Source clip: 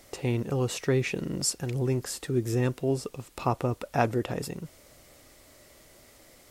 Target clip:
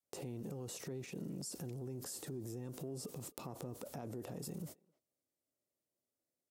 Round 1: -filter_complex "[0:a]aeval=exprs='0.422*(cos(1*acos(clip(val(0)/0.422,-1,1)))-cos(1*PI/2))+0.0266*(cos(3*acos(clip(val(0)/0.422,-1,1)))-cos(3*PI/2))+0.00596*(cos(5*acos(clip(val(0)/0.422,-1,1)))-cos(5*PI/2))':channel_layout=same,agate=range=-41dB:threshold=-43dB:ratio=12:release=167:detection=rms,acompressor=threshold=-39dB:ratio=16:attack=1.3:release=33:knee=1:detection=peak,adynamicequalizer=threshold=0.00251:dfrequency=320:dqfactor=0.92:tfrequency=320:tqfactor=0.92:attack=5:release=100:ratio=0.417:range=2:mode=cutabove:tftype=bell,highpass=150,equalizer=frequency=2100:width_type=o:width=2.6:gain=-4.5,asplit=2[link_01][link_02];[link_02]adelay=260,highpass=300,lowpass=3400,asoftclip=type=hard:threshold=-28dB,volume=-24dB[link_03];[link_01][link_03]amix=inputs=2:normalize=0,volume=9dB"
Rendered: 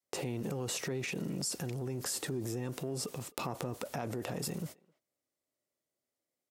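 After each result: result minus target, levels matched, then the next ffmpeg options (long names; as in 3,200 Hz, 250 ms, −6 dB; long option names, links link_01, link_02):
downward compressor: peak gain reduction −7 dB; 2,000 Hz band +7.0 dB
-filter_complex "[0:a]aeval=exprs='0.422*(cos(1*acos(clip(val(0)/0.422,-1,1)))-cos(1*PI/2))+0.0266*(cos(3*acos(clip(val(0)/0.422,-1,1)))-cos(3*PI/2))+0.00596*(cos(5*acos(clip(val(0)/0.422,-1,1)))-cos(5*PI/2))':channel_layout=same,agate=range=-41dB:threshold=-43dB:ratio=12:release=167:detection=rms,acompressor=threshold=-46.5dB:ratio=16:attack=1.3:release=33:knee=1:detection=peak,adynamicequalizer=threshold=0.00251:dfrequency=320:dqfactor=0.92:tfrequency=320:tqfactor=0.92:attack=5:release=100:ratio=0.417:range=2:mode=cutabove:tftype=bell,highpass=150,equalizer=frequency=2100:width_type=o:width=2.6:gain=-4.5,asplit=2[link_01][link_02];[link_02]adelay=260,highpass=300,lowpass=3400,asoftclip=type=hard:threshold=-28dB,volume=-24dB[link_03];[link_01][link_03]amix=inputs=2:normalize=0,volume=9dB"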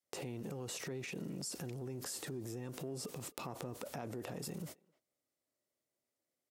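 2,000 Hz band +6.5 dB
-filter_complex "[0:a]aeval=exprs='0.422*(cos(1*acos(clip(val(0)/0.422,-1,1)))-cos(1*PI/2))+0.0266*(cos(3*acos(clip(val(0)/0.422,-1,1)))-cos(3*PI/2))+0.00596*(cos(5*acos(clip(val(0)/0.422,-1,1)))-cos(5*PI/2))':channel_layout=same,agate=range=-41dB:threshold=-43dB:ratio=12:release=167:detection=rms,acompressor=threshold=-46.5dB:ratio=16:attack=1.3:release=33:knee=1:detection=peak,adynamicequalizer=threshold=0.00251:dfrequency=320:dqfactor=0.92:tfrequency=320:tqfactor=0.92:attack=5:release=100:ratio=0.417:range=2:mode=cutabove:tftype=bell,highpass=150,equalizer=frequency=2100:width_type=o:width=2.6:gain=-13.5,asplit=2[link_01][link_02];[link_02]adelay=260,highpass=300,lowpass=3400,asoftclip=type=hard:threshold=-28dB,volume=-24dB[link_03];[link_01][link_03]amix=inputs=2:normalize=0,volume=9dB"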